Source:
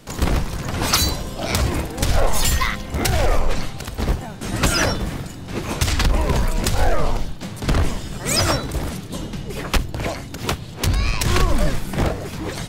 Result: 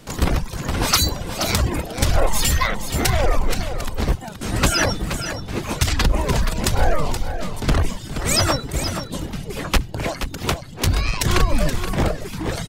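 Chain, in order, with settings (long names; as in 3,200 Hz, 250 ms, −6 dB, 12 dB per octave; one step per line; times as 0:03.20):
reverb reduction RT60 0.68 s
on a send: single-tap delay 475 ms −9 dB
on the sum: level +1 dB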